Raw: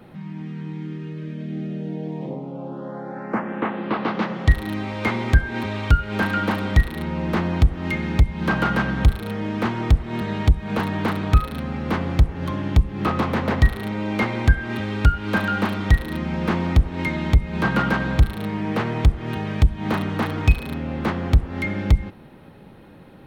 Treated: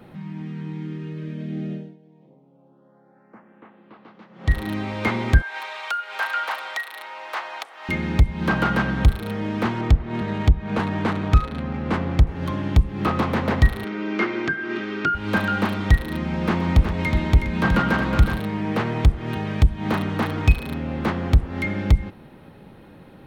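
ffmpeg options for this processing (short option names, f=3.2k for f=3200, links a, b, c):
-filter_complex "[0:a]asettb=1/sr,asplit=3[a][b][c];[a]atrim=end=5.424[d];[b]atrim=start=5.42:end=7.89,asetpts=PTS-STARTPTS,afade=t=in:d=0.004:c=qsin,afade=t=out:st=2.466:d=0.004:c=qsin,highpass=f=710:w=0.5412,highpass=f=710:w=1.3066[e];[c]atrim=start=7.886[f];[d][e]acrossfade=d=0.004:c1=hsin:c2=qsin[g];[g][f]acrossfade=d=0.004:c1=qsin:c2=hsin,asettb=1/sr,asplit=3[h][i][j];[h]atrim=end=9.814[k];[i]atrim=start=9.81:end=12.27,asetpts=PTS-STARTPTS,afade=t=in:d=0.004:c=qsin,afade=t=out:st=2.456:d=0.004:c=qsin,adynamicsmooth=sensitivity=4:basefreq=3.1k[l];[j]atrim=start=12.266[m];[k][l]acrossfade=d=0.004:c1=hsin:c2=qsin[n];[n][m]acrossfade=d=0.004:c1=qsin:c2=hsin,asettb=1/sr,asplit=3[o][p][q];[o]atrim=end=13.844[r];[p]atrim=start=13.84:end=15.15,asetpts=PTS-STARTPTS,afade=t=in:d=0.004:c=qsin,afade=t=out:st=1.306:d=0.004:c=qsin,highpass=f=190:w=0.5412,highpass=f=190:w=1.3066,equalizer=f=240:t=q:w=4:g=-6,equalizer=f=360:t=q:w=4:g=9,equalizer=f=530:t=q:w=4:g=-8,equalizer=f=850:t=q:w=4:g=-9,equalizer=f=1.4k:t=q:w=4:g=5,equalizer=f=3.9k:t=q:w=4:g=-5,lowpass=f=5.9k:w=0.5412,lowpass=f=5.9k:w=1.3066[s];[q]atrim=start=15.146[t];[r][s]acrossfade=d=0.004:c1=hsin:c2=qsin[u];[u][t]acrossfade=d=0.004:c1=qsin:c2=hsin,asettb=1/sr,asplit=3[v][w][x];[v]atrim=end=16.304[y];[w]atrim=start=16.3:end=18.4,asetpts=PTS-STARTPTS,afade=t=in:d=0.004:c=qsin,afade=t=out:st=2.096:d=0.004:c=qsin,aecho=1:1:125|368:0.2|0.447,atrim=end_sample=92610[z];[x]atrim=start=18.396[aa];[y][z]acrossfade=d=0.004:c1=hsin:c2=qsin[ab];[ab][aa]acrossfade=d=0.004:c1=qsin:c2=hsin,asplit=3[ac][ad][ae];[ac]atrim=end=2.01,asetpts=PTS-STARTPTS,afade=t=out:st=1.73:d=0.28:c=qua:silence=0.0668344[af];[ad]atrim=start=2.01:end=4.28,asetpts=PTS-STARTPTS,volume=-23.5dB[ag];[ae]atrim=start=4.28,asetpts=PTS-STARTPTS,afade=t=in:d=0.28:c=qua:silence=0.0668344[ah];[af][ag][ah]concat=n=3:v=0:a=1"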